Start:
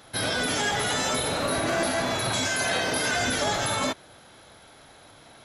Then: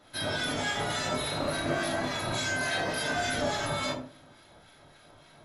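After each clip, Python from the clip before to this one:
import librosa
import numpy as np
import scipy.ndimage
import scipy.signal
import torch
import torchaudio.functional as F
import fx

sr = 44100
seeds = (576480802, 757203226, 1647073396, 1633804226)

y = fx.high_shelf(x, sr, hz=9500.0, db=-7.0)
y = fx.room_shoebox(y, sr, seeds[0], volume_m3=420.0, walls='furnished', distance_m=2.8)
y = fx.harmonic_tremolo(y, sr, hz=3.5, depth_pct=50, crossover_hz=1300.0)
y = y * librosa.db_to_amplitude(-7.0)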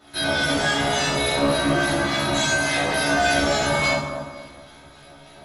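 y = fx.doubler(x, sr, ms=14.0, db=-2)
y = fx.echo_bbd(y, sr, ms=237, stages=2048, feedback_pct=30, wet_db=-6.5)
y = fx.rev_double_slope(y, sr, seeds[1], early_s=0.62, late_s=2.5, knee_db=-20, drr_db=-0.5)
y = y * librosa.db_to_amplitude(3.5)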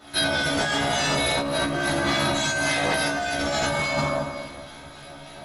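y = fx.hum_notches(x, sr, base_hz=60, count=7)
y = fx.over_compress(y, sr, threshold_db=-25.0, ratio=-1.0)
y = y * librosa.db_to_amplitude(1.0)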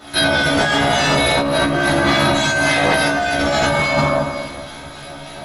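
y = fx.dynamic_eq(x, sr, hz=7600.0, q=0.72, threshold_db=-43.0, ratio=4.0, max_db=-6)
y = y * librosa.db_to_amplitude(8.5)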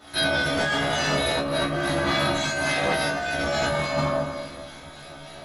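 y = fx.doubler(x, sr, ms=26.0, db=-7.0)
y = y * librosa.db_to_amplitude(-9.0)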